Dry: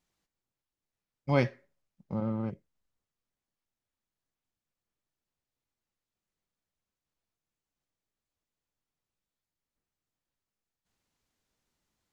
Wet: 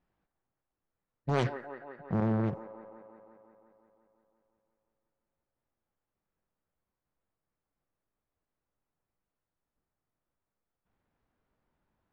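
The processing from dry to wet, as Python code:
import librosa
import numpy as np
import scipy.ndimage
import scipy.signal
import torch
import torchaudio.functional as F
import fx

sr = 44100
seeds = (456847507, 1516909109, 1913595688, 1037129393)

p1 = fx.env_lowpass(x, sr, base_hz=1800.0, full_db=-31.5)
p2 = fx.over_compress(p1, sr, threshold_db=-31.0, ratio=-0.5)
p3 = p1 + (p2 * librosa.db_to_amplitude(0.5))
p4 = fx.formant_shift(p3, sr, semitones=-3)
p5 = p4 + fx.echo_wet_bandpass(p4, sr, ms=175, feedback_pct=70, hz=880.0, wet_db=-8, dry=0)
p6 = fx.doppler_dist(p5, sr, depth_ms=0.7)
y = p6 * librosa.db_to_amplitude(-3.0)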